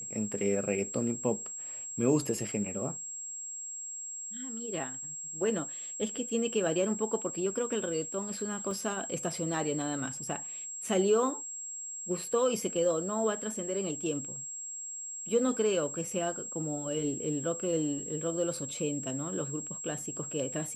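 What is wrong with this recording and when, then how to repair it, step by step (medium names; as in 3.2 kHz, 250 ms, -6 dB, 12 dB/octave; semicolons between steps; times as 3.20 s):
whine 7.6 kHz -38 dBFS
8.71 s: dropout 2.2 ms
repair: band-stop 7.6 kHz, Q 30; interpolate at 8.71 s, 2.2 ms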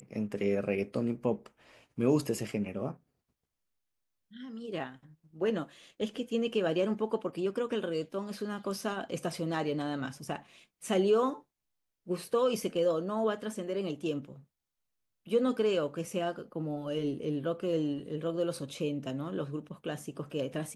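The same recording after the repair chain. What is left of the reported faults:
nothing left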